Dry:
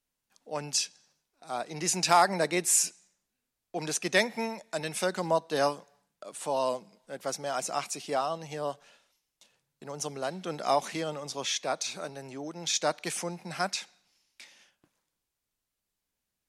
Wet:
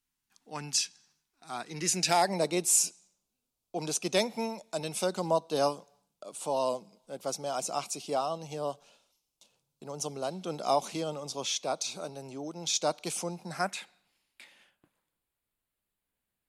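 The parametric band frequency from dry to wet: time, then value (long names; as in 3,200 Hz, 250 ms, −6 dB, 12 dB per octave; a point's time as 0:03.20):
parametric band −15 dB 0.54 octaves
0:01.59 550 Hz
0:02.49 1,800 Hz
0:13.39 1,800 Hz
0:13.79 5,800 Hz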